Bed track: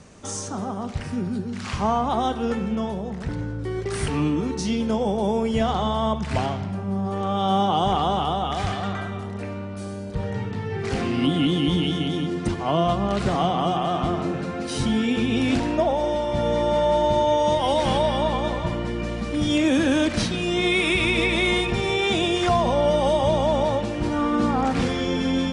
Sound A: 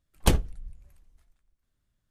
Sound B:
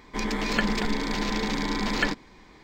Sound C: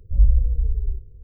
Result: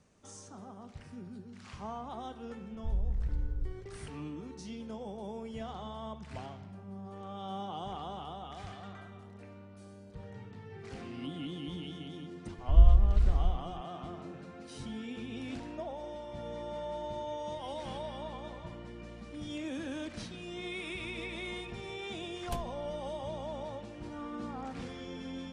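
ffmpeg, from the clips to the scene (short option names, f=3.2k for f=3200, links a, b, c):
-filter_complex "[3:a]asplit=2[a][b];[0:a]volume=-19dB[c];[a]acompressor=threshold=-16dB:ratio=6:attack=3.2:release=140:knee=1:detection=peak,atrim=end=1.23,asetpts=PTS-STARTPTS,volume=-10.5dB,afade=t=in:d=0.004:c=hsin,afade=t=out:st=1.226:d=0.004:c=hsin,adelay=2740[d];[b]atrim=end=1.23,asetpts=PTS-STARTPTS,volume=-4dB,afade=t=in:d=0.004:c=hsin,afade=t=out:st=1.226:d=0.004:c=hsin,adelay=12580[e];[1:a]atrim=end=2.1,asetpts=PTS-STARTPTS,volume=-18dB,afade=t=in:d=0.004:c=hsin,afade=t=out:st=2.096:d=0.004:c=hsin,adelay=22250[f];[c][d][e][f]amix=inputs=4:normalize=0"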